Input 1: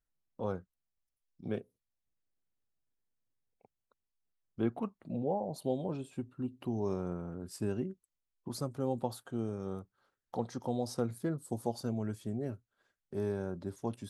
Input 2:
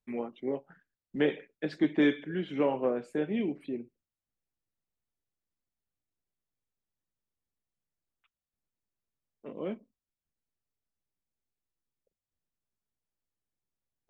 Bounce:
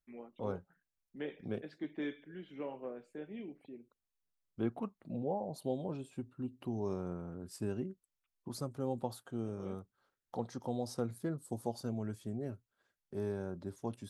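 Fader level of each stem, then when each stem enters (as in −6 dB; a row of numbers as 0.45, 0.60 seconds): −3.0, −14.5 decibels; 0.00, 0.00 seconds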